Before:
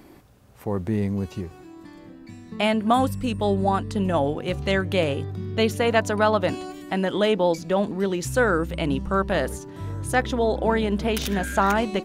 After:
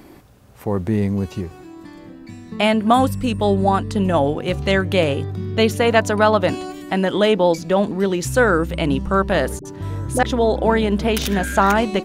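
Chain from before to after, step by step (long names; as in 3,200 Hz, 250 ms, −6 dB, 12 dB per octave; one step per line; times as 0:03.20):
0:09.59–0:10.23: all-pass dispersion highs, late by 61 ms, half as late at 450 Hz
level +5 dB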